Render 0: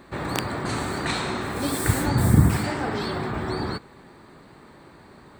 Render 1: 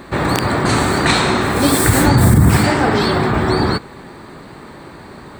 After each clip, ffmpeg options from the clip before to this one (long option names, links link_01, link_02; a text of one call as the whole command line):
ffmpeg -i in.wav -af "alimiter=level_in=13.5dB:limit=-1dB:release=50:level=0:latency=1,volume=-1dB" out.wav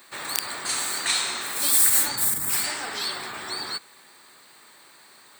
ffmpeg -i in.wav -af "aderivative" out.wav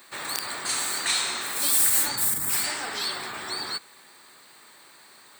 ffmpeg -i in.wav -af "asoftclip=type=tanh:threshold=-14dB" out.wav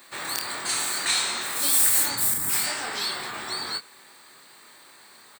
ffmpeg -i in.wav -filter_complex "[0:a]asplit=2[link_01][link_02];[link_02]adelay=25,volume=-6dB[link_03];[link_01][link_03]amix=inputs=2:normalize=0" out.wav